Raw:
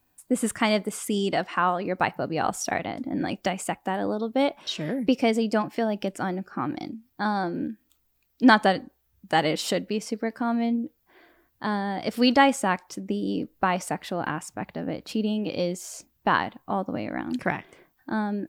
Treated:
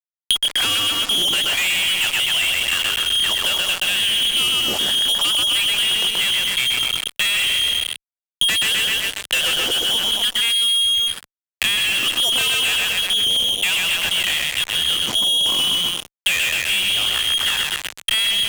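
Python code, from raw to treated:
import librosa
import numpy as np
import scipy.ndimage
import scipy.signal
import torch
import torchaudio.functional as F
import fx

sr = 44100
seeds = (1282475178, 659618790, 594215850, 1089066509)

p1 = x + fx.echo_feedback(x, sr, ms=128, feedback_pct=49, wet_db=-5.5, dry=0)
p2 = fx.freq_invert(p1, sr, carrier_hz=3500)
p3 = fx.fuzz(p2, sr, gain_db=41.0, gate_db=-36.0)
p4 = fx.band_squash(p3, sr, depth_pct=100)
y = F.gain(torch.from_numpy(p4), -4.0).numpy()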